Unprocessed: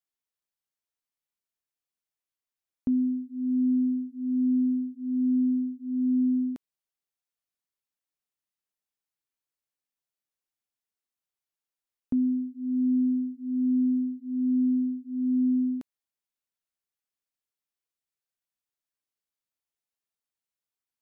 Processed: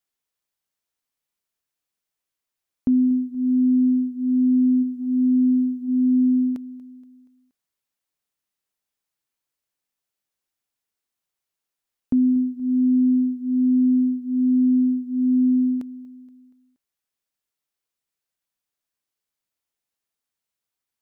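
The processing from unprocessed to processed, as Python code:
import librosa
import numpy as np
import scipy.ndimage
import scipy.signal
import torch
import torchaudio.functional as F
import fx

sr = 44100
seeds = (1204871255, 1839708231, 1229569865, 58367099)

y = fx.dynamic_eq(x, sr, hz=300.0, q=0.9, threshold_db=-37.0, ratio=4.0, max_db=-5, at=(4.82, 5.87), fade=0.02)
y = fx.rider(y, sr, range_db=10, speed_s=0.5)
y = fx.echo_feedback(y, sr, ms=237, feedback_pct=47, wet_db=-19)
y = y * 10.0 ** (7.0 / 20.0)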